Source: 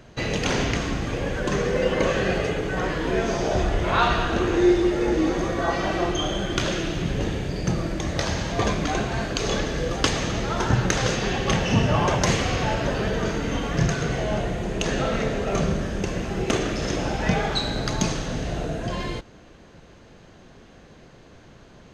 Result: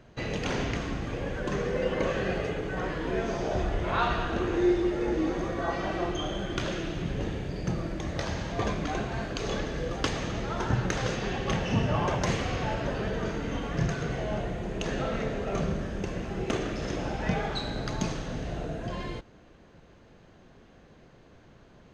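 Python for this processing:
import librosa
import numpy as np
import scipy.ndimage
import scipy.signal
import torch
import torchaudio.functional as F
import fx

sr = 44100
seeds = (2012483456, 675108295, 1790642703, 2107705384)

y = fx.high_shelf(x, sr, hz=4300.0, db=-7.5)
y = y * 10.0 ** (-6.0 / 20.0)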